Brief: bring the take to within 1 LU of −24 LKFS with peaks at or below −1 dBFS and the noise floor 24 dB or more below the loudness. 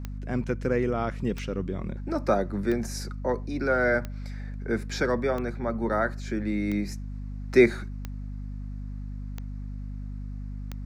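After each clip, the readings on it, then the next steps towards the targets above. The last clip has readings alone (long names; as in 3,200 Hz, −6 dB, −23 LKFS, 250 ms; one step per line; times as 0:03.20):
number of clicks 9; mains hum 50 Hz; hum harmonics up to 250 Hz; level of the hum −33 dBFS; integrated loudness −29.0 LKFS; sample peak −6.5 dBFS; target loudness −24.0 LKFS
→ click removal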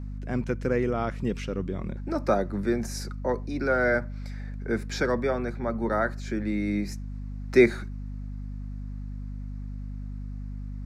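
number of clicks 0; mains hum 50 Hz; hum harmonics up to 250 Hz; level of the hum −33 dBFS
→ hum removal 50 Hz, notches 5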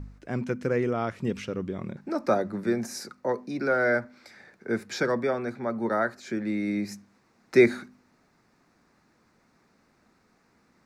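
mains hum none found; integrated loudness −28.0 LKFS; sample peak −7.0 dBFS; target loudness −24.0 LKFS
→ level +4 dB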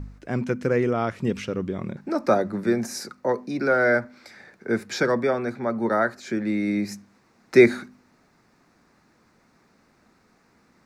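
integrated loudness −24.0 LKFS; sample peak −3.0 dBFS; background noise floor −62 dBFS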